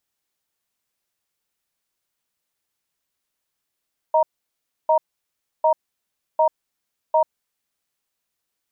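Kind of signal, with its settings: cadence 629 Hz, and 937 Hz, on 0.09 s, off 0.66 s, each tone -16 dBFS 3.34 s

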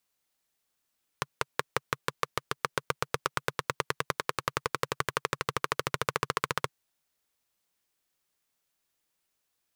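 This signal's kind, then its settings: single-cylinder engine model, changing speed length 5.47 s, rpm 600, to 1800, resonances 140/460/1100 Hz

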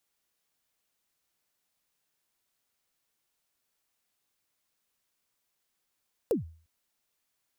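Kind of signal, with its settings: kick drum length 0.35 s, from 530 Hz, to 81 Hz, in 130 ms, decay 0.43 s, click on, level -20 dB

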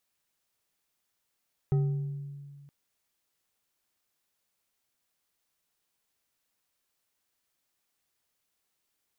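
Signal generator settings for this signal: glass hit bar, length 0.97 s, lowest mode 142 Hz, decay 1.99 s, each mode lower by 10.5 dB, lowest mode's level -21 dB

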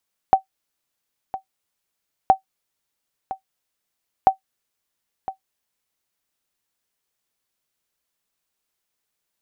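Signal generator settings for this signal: sonar ping 767 Hz, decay 0.11 s, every 1.97 s, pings 3, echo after 1.01 s, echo -15 dB -3.5 dBFS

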